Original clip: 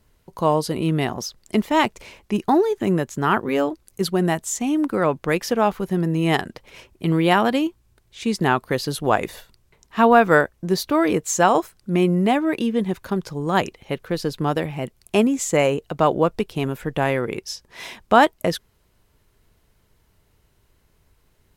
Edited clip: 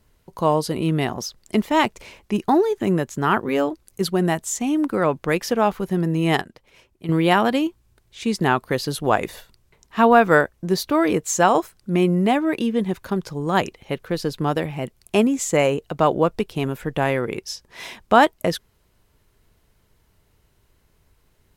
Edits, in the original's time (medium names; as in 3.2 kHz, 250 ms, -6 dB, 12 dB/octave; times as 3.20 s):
6.42–7.09 s: gain -9 dB